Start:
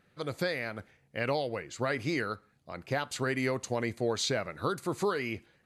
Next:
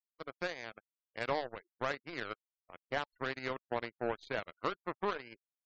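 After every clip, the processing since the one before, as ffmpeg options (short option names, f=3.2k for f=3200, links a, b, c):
-af "bandpass=f=930:t=q:w=0.68:csg=0,aeval=exprs='0.106*(cos(1*acos(clip(val(0)/0.106,-1,1)))-cos(1*PI/2))+0.0133*(cos(3*acos(clip(val(0)/0.106,-1,1)))-cos(3*PI/2))+0.00133*(cos(5*acos(clip(val(0)/0.106,-1,1)))-cos(5*PI/2))+0.00266*(cos(6*acos(clip(val(0)/0.106,-1,1)))-cos(6*PI/2))+0.00944*(cos(7*acos(clip(val(0)/0.106,-1,1)))-cos(7*PI/2))':c=same,afftfilt=real='re*gte(hypot(re,im),0.00178)':imag='im*gte(hypot(re,im),0.00178)':win_size=1024:overlap=0.75,volume=1dB"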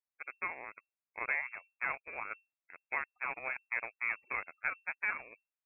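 -af "lowpass=f=2.3k:t=q:w=0.5098,lowpass=f=2.3k:t=q:w=0.6013,lowpass=f=2.3k:t=q:w=0.9,lowpass=f=2.3k:t=q:w=2.563,afreqshift=-2700"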